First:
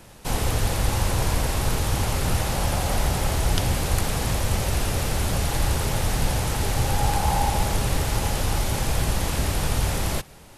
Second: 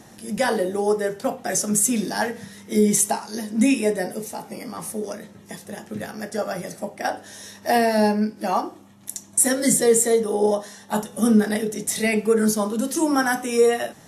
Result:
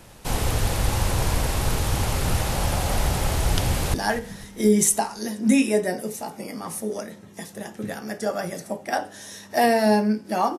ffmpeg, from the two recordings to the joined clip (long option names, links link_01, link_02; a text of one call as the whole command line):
ffmpeg -i cue0.wav -i cue1.wav -filter_complex "[0:a]apad=whole_dur=10.58,atrim=end=10.58,atrim=end=3.942[link_01];[1:a]atrim=start=2.058:end=8.7[link_02];[link_01][link_02]acrossfade=duration=0.004:curve1=hsin:curve2=hsin,asplit=2[link_03][link_04];[link_04]afade=type=in:start_time=3.65:duration=0.01,afade=type=out:start_time=3.94:duration=0.01,aecho=0:1:250|500|750|1000|1250:0.16788|0.0923342|0.0507838|0.0279311|0.0153621[link_05];[link_03][link_05]amix=inputs=2:normalize=0" out.wav